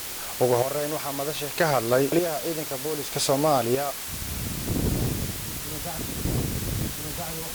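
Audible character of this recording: chopped level 0.64 Hz, depth 65%, duty 40%; a quantiser's noise floor 6-bit, dither triangular; Opus

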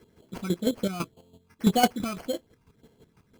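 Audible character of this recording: phasing stages 12, 1.8 Hz, lowest notch 530–2800 Hz; aliases and images of a low sample rate 3.7 kHz, jitter 0%; chopped level 6 Hz, depth 65%, duty 25%

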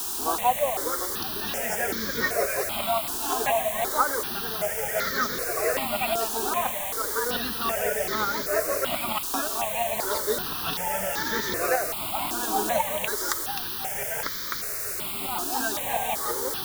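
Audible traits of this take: tremolo saw up 5.7 Hz, depth 50%; a quantiser's noise floor 6-bit, dither triangular; notches that jump at a steady rate 2.6 Hz 560–2700 Hz

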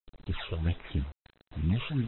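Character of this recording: a buzz of ramps at a fixed pitch in blocks of 8 samples; phasing stages 8, 1.5 Hz, lowest notch 220–3300 Hz; a quantiser's noise floor 8-bit, dither none; AAC

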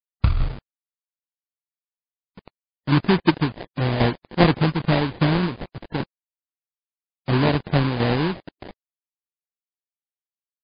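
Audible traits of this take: a quantiser's noise floor 6-bit, dither none; tremolo saw down 2.5 Hz, depth 65%; aliases and images of a low sample rate 1.3 kHz, jitter 20%; MP3

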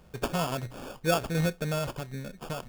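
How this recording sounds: aliases and images of a low sample rate 2 kHz, jitter 0%

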